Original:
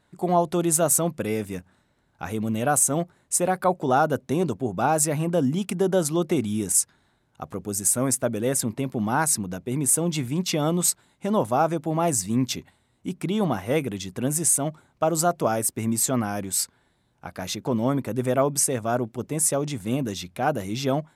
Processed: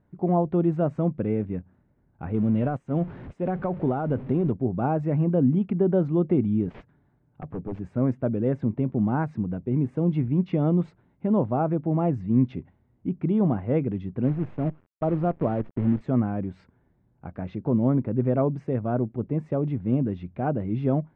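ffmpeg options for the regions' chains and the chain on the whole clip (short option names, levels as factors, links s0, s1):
-filter_complex "[0:a]asettb=1/sr,asplit=3[s0][s1][s2];[s0]atrim=end=2.344[s3];[s1]atrim=start=2.34:end=4.52,asetpts=PTS-STARTPTS,afade=t=in:d=0.004:c=qsin,afade=t=out:st=2.176:d=0.004:c=qsin,aeval=exprs='val(0)+0.5*0.0188*sgn(val(0))':c=same,highshelf=f=4300:g=11,acompressor=threshold=0.112:ratio=8:attack=3.2:release=140:knee=1:detection=peak[s4];[s2]atrim=start=4.516[s5];[s3][s4]acrossfade=d=0.004:c1=hsin:c2=qsin[s6];[s6][s5]acrossfade=d=0.004:c1=qsin:c2=hsin,asettb=1/sr,asplit=3[s7][s8][s9];[s7]atrim=end=6.674[s10];[s8]atrim=start=6.67:end=7.85,asetpts=PTS-STARTPTS,afade=t=in:d=0.004:c=qsin,afade=t=out:st=1.176:d=0.004:c=qsin,highpass=42,aecho=1:1:6.9:0.32,atrim=end_sample=52038,aeval=exprs='0.0596*(abs(mod(val(0)/0.0596+3,4)-2)-1)':c=same[s11];[s9]atrim=start=7.846[s12];[s10][s11]acrossfade=d=0.004:c1=hsin:c2=qsin[s13];[s13][s12]acrossfade=d=0.004:c1=qsin:c2=hsin,asettb=1/sr,asplit=3[s14][s15][s16];[s14]atrim=end=14.244[s17];[s15]atrim=start=14.24:end=16.01,asetpts=PTS-STARTPTS,afade=t=in:d=0.004:c=qsin,afade=t=out:st=1.766:d=0.004:c=qsin,lowpass=f=1700:p=1,acrusher=bits=6:dc=4:mix=0:aa=0.000001[s18];[s16]atrim=start=16.006[s19];[s17][s18]acrossfade=d=0.004:c1=hsin:c2=qsin[s20];[s20][s19]acrossfade=d=0.004:c1=qsin:c2=hsin,lowpass=f=2500:w=0.5412,lowpass=f=2500:w=1.3066,tiltshelf=f=640:g=9,volume=0.631"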